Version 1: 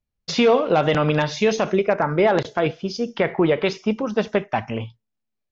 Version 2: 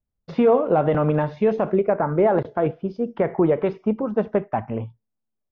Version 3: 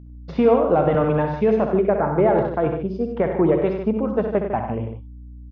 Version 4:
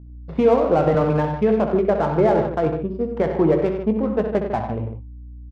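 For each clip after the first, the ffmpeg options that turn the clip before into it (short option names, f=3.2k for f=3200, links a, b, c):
-af "lowpass=1.1k"
-filter_complex "[0:a]aeval=exprs='val(0)+0.01*(sin(2*PI*60*n/s)+sin(2*PI*2*60*n/s)/2+sin(2*PI*3*60*n/s)/3+sin(2*PI*4*60*n/s)/4+sin(2*PI*5*60*n/s)/5)':c=same,asplit=2[a][b];[b]aecho=0:1:64.14|96.21|151.6:0.398|0.355|0.316[c];[a][c]amix=inputs=2:normalize=0"
-filter_complex "[0:a]adynamicsmooth=sensitivity=3:basefreq=1.4k,asplit=2[a][b];[b]adelay=19,volume=-11.5dB[c];[a][c]amix=inputs=2:normalize=0"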